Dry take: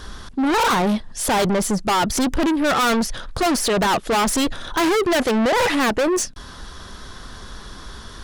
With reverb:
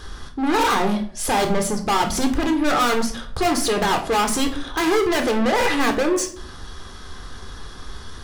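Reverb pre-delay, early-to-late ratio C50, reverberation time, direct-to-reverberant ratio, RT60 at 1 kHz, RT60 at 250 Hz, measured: 13 ms, 11.0 dB, 0.55 s, 4.0 dB, 0.50 s, 0.65 s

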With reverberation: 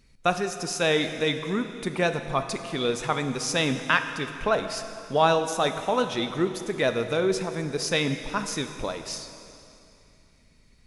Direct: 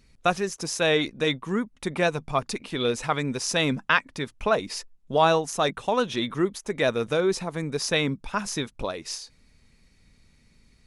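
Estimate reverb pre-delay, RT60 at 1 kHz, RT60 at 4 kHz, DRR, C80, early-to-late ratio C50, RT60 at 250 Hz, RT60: 5 ms, 2.8 s, 2.6 s, 7.5 dB, 9.5 dB, 9.0 dB, 2.8 s, 2.8 s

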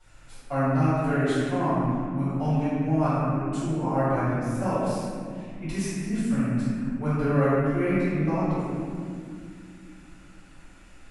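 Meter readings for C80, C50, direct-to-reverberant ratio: -3.0 dB, -5.5 dB, -16.0 dB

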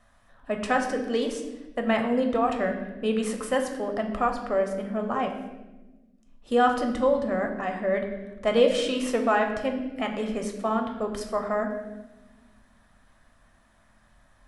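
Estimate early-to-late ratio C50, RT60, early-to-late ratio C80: 7.0 dB, 1.1 s, 8.5 dB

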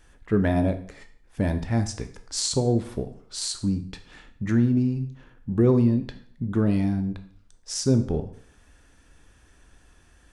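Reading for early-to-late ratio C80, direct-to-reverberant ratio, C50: 16.0 dB, 8.0 dB, 12.0 dB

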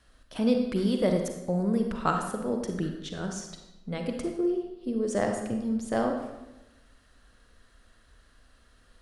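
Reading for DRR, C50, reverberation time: 3.5 dB, 4.5 dB, 1.0 s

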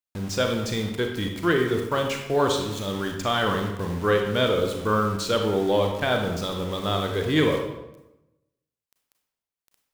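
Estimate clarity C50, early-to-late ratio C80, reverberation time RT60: 5.0 dB, 7.5 dB, 0.95 s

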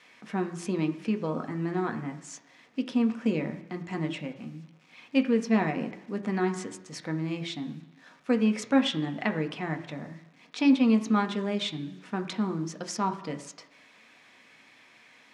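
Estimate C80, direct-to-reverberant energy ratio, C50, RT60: 14.5 dB, 5.0 dB, 12.5 dB, 1.0 s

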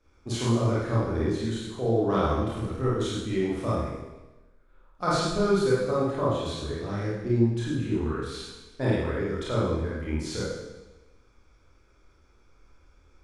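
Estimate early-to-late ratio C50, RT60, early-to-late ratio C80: -4.5 dB, 1.1 s, 2.0 dB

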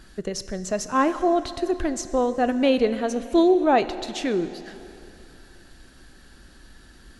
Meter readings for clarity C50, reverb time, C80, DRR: 13.0 dB, 2.8 s, 13.5 dB, 12.0 dB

